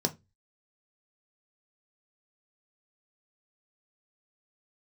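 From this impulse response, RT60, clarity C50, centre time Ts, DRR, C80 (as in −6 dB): 0.20 s, 20.5 dB, 7 ms, 4.5 dB, 29.0 dB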